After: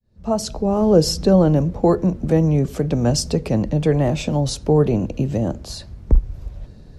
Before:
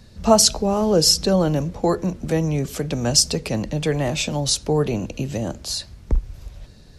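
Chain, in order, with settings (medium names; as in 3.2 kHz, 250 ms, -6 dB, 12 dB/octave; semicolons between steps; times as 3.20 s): fade-in on the opening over 0.97 s; tilt shelf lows +7 dB, about 1.4 kHz; trim -1.5 dB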